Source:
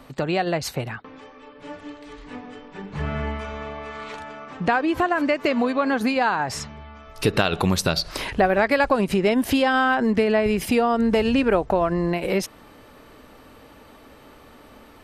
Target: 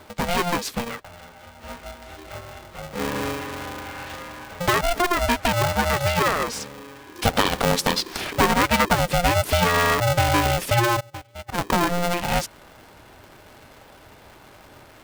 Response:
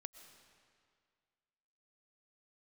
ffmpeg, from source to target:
-filter_complex "[0:a]asplit=3[s0][s1][s2];[s0]afade=t=out:st=10.99:d=0.02[s3];[s1]agate=range=0.02:threshold=0.178:ratio=16:detection=peak,afade=t=in:st=10.99:d=0.02,afade=t=out:st=11.57:d=0.02[s4];[s2]afade=t=in:st=11.57:d=0.02[s5];[s3][s4][s5]amix=inputs=3:normalize=0,aeval=exprs='val(0)*sgn(sin(2*PI*350*n/s))':c=same"

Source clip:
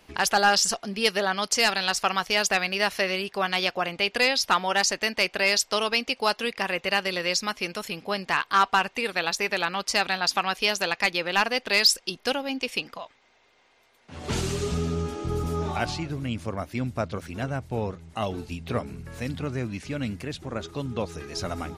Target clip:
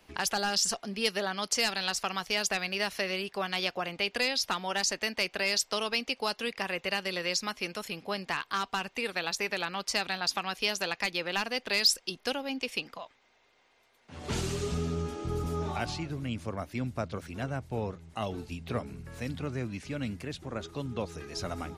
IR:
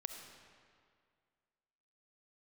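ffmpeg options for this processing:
-filter_complex "[0:a]acrossover=split=350|3000[s0][s1][s2];[s1]acompressor=threshold=0.0562:ratio=6[s3];[s0][s3][s2]amix=inputs=3:normalize=0,volume=0.596"

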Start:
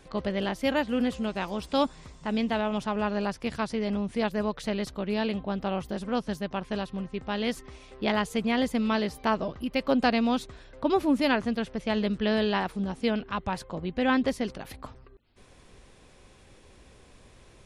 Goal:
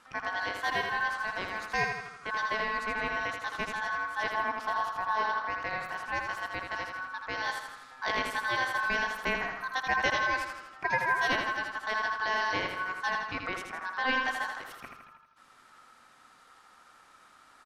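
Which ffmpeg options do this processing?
-filter_complex "[0:a]aeval=exprs='val(0)*sin(2*PI*1300*n/s)':c=same,asettb=1/sr,asplit=3[s0][s1][s2];[s0]atrim=end=4.344[s3];[s1]atrim=start=4.34:end=5.47,asetpts=PTS-STARTPTS,afade=t=in:d=0.004:c=qsin,afade=t=out:st=1.126:d=0.004:c=qsin,equalizer=f=1000:t=o:w=1:g=8,equalizer=f=2000:t=o:w=1:g=-6,equalizer=f=8000:t=o:w=1:g=-9[s4];[s2]atrim=start=5.466[s5];[s3][s4]acrossfade=d=0.004:c1=hsin:c2=qsin[s6];[s6][s5]acrossfade=d=0.004:c1=qsin:c2=hsin,asplit=2[s7][s8];[s8]aecho=0:1:81|162|243|324|405|486|567:0.531|0.281|0.149|0.079|0.0419|0.0222|0.0118[s9];[s7][s9]amix=inputs=2:normalize=0,volume=0.75"

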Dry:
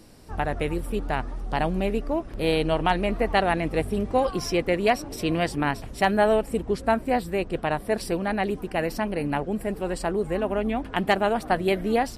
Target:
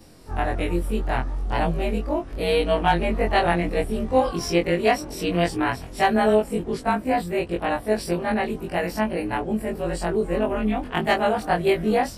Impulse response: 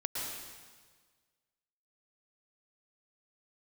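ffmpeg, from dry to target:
-af "afftfilt=real='re':imag='-im':win_size=2048:overlap=0.75,volume=2"

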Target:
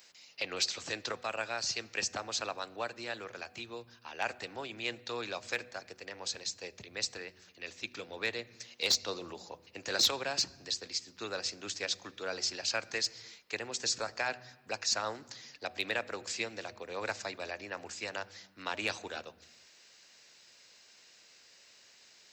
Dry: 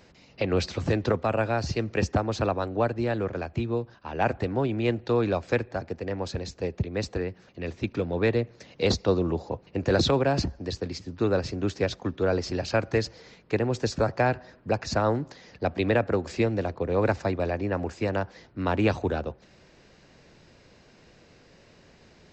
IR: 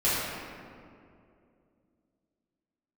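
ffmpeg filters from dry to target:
-filter_complex "[0:a]aderivative,bandreject=f=123.5:t=h:w=4,bandreject=f=247:t=h:w=4,bandreject=f=370.5:t=h:w=4,bandreject=f=494:t=h:w=4,bandreject=f=617.5:t=h:w=4,bandreject=f=741:t=h:w=4,asplit=2[s0][s1];[s1]asubboost=boost=9:cutoff=180[s2];[1:a]atrim=start_sample=2205,afade=t=out:st=0.43:d=0.01,atrim=end_sample=19404[s3];[s2][s3]afir=irnorm=-1:irlink=0,volume=0.0211[s4];[s0][s4]amix=inputs=2:normalize=0,volume=23.7,asoftclip=hard,volume=0.0422,volume=2.51"

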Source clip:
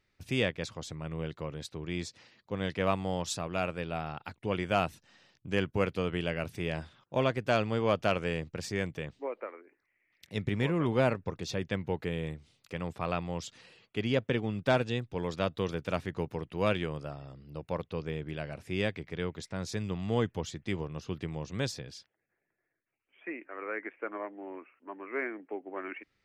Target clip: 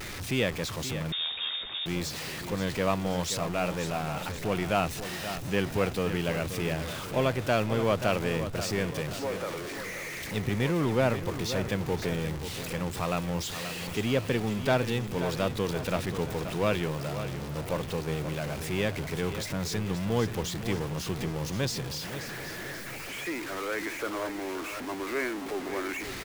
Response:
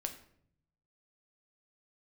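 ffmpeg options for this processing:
-filter_complex "[0:a]aeval=exprs='val(0)+0.5*0.0237*sgn(val(0))':c=same,asplit=2[s0][s1];[s1]aecho=0:1:530|1060|1590|2120|2650:0.299|0.149|0.0746|0.0373|0.0187[s2];[s0][s2]amix=inputs=2:normalize=0,asettb=1/sr,asplit=3[s3][s4][s5];[s3]atrim=end=1.124[s6];[s4]atrim=start=1.12:end=1.86,asetpts=PTS-STARTPTS,afade=t=in:d=0.004:c=qsin,afade=t=out:st=0.736:d=0.004:c=qsin,lowpass=f=3200:t=q:w=0.5098,lowpass=f=3200:t=q:w=0.6013,lowpass=f=3200:t=q:w=0.9,lowpass=f=3200:t=q:w=2.563,afreqshift=-3800[s7];[s5]atrim=start=1.856[s8];[s6][s7]acrossfade=d=0.004:c1=hsin:c2=qsin[s9];[s9][s8]acrossfade=d=0.004:c1=qsin:c2=hsin"

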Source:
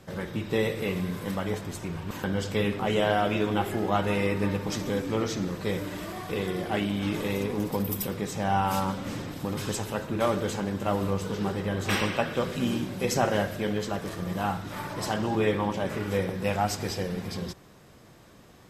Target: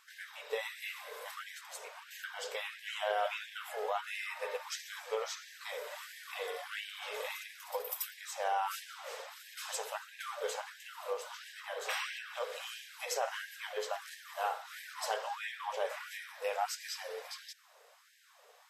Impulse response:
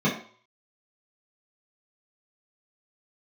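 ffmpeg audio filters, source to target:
-af "alimiter=limit=0.141:level=0:latency=1:release=252,equalizer=f=280:w=0.57:g=2.5,bandreject=f=399.3:t=h:w=4,bandreject=f=798.6:t=h:w=4,bandreject=f=1197.9:t=h:w=4,bandreject=f=1597.2:t=h:w=4,bandreject=f=1996.5:t=h:w=4,bandreject=f=2395.8:t=h:w=4,bandreject=f=2795.1:t=h:w=4,bandreject=f=3194.4:t=h:w=4,bandreject=f=3593.7:t=h:w=4,bandreject=f=3993:t=h:w=4,bandreject=f=4392.3:t=h:w=4,bandreject=f=4791.6:t=h:w=4,bandreject=f=5190.9:t=h:w=4,bandreject=f=5590.2:t=h:w=4,bandreject=f=5989.5:t=h:w=4,bandreject=f=6388.8:t=h:w=4,bandreject=f=6788.1:t=h:w=4,bandreject=f=7187.4:t=h:w=4,afftfilt=real='re*gte(b*sr/1024,390*pow(1600/390,0.5+0.5*sin(2*PI*1.5*pts/sr)))':imag='im*gte(b*sr/1024,390*pow(1600/390,0.5+0.5*sin(2*PI*1.5*pts/sr)))':win_size=1024:overlap=0.75,volume=0.596"

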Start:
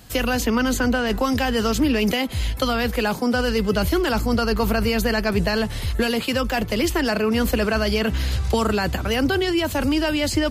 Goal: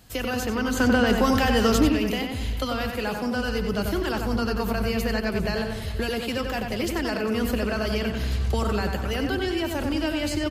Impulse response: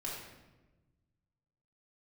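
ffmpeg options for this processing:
-filter_complex "[0:a]asplit=2[s0][s1];[s1]aecho=0:1:400:0.141[s2];[s0][s2]amix=inputs=2:normalize=0,asettb=1/sr,asplit=3[s3][s4][s5];[s3]atrim=end=0.774[s6];[s4]atrim=start=0.77:end=1.89,asetpts=PTS-STARTPTS,afade=t=in:d=0.004:c=qsin,afade=t=out:st=1.116:d=0.004:c=qsin,acontrast=77[s7];[s5]atrim=start=1.886[s8];[s6][s7]acrossfade=d=0.004:c1=hsin:c2=qsin[s9];[s9][s8]acrossfade=d=0.004:c1=qsin:c2=hsin,asplit=2[s10][s11];[s11]adelay=92,lowpass=f=3300:p=1,volume=0.631,asplit=2[s12][s13];[s13]adelay=92,lowpass=f=3300:p=1,volume=0.47,asplit=2[s14][s15];[s15]adelay=92,lowpass=f=3300:p=1,volume=0.47,asplit=2[s16][s17];[s17]adelay=92,lowpass=f=3300:p=1,volume=0.47,asplit=2[s18][s19];[s19]adelay=92,lowpass=f=3300:p=1,volume=0.47,asplit=2[s20][s21];[s21]adelay=92,lowpass=f=3300:p=1,volume=0.47[s22];[s12][s14][s16][s18][s20][s22]amix=inputs=6:normalize=0[s23];[s10][s23]amix=inputs=2:normalize=0,volume=0.447"

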